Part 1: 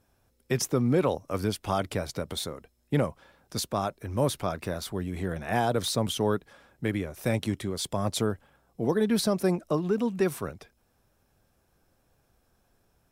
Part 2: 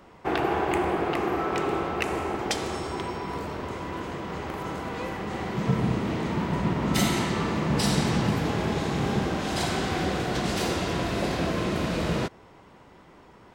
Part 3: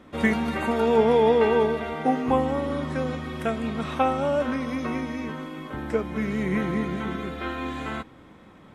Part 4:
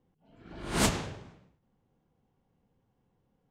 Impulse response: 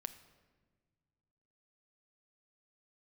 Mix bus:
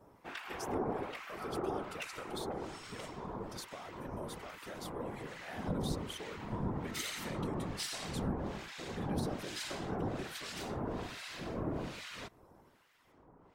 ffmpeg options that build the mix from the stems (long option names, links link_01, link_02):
-filter_complex "[0:a]highpass=frequency=420:poles=1,alimiter=limit=-22dB:level=0:latency=1:release=198,volume=1dB[link_01];[1:a]asoftclip=type=tanh:threshold=-19.5dB,acrossover=split=1300[link_02][link_03];[link_02]aeval=exprs='val(0)*(1-1/2+1/2*cos(2*PI*1.2*n/s))':channel_layout=same[link_04];[link_03]aeval=exprs='val(0)*(1-1/2-1/2*cos(2*PI*1.2*n/s))':channel_layout=same[link_05];[link_04][link_05]amix=inputs=2:normalize=0,volume=-1.5dB[link_06];[3:a]adelay=2200,volume=-11.5dB[link_07];[link_01][link_07]amix=inputs=2:normalize=0,acompressor=threshold=-44dB:ratio=2,volume=0dB[link_08];[link_06][link_08]amix=inputs=2:normalize=0,afftfilt=real='hypot(re,im)*cos(2*PI*random(0))':imag='hypot(re,im)*sin(2*PI*random(1))':win_size=512:overlap=0.75"